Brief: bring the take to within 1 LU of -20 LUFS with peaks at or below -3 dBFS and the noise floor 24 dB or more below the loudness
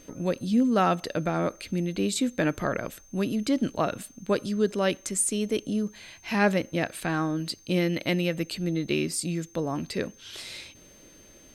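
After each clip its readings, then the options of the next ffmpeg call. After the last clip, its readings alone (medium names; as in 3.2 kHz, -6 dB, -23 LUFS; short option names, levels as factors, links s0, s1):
steady tone 6.3 kHz; tone level -54 dBFS; loudness -27.5 LUFS; peak level -11.0 dBFS; loudness target -20.0 LUFS
-> -af "bandreject=f=6300:w=30"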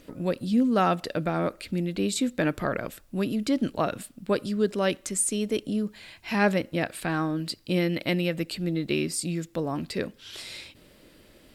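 steady tone not found; loudness -27.5 LUFS; peak level -11.0 dBFS; loudness target -20.0 LUFS
-> -af "volume=2.37"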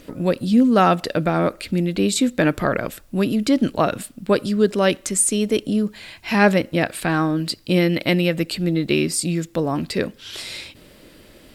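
loudness -20.0 LUFS; peak level -3.5 dBFS; noise floor -49 dBFS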